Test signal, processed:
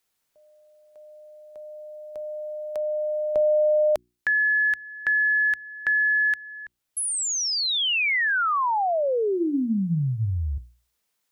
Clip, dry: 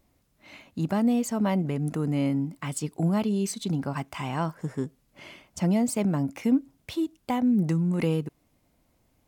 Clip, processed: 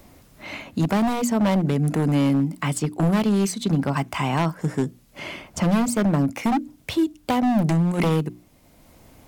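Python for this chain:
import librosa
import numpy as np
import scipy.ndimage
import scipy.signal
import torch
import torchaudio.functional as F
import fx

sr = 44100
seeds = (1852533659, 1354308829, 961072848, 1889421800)

y = 10.0 ** (-21.0 / 20.0) * (np.abs((x / 10.0 ** (-21.0 / 20.0) + 3.0) % 4.0 - 2.0) - 1.0)
y = fx.hum_notches(y, sr, base_hz=60, count=6)
y = fx.band_squash(y, sr, depth_pct=40)
y = y * librosa.db_to_amplitude(7.0)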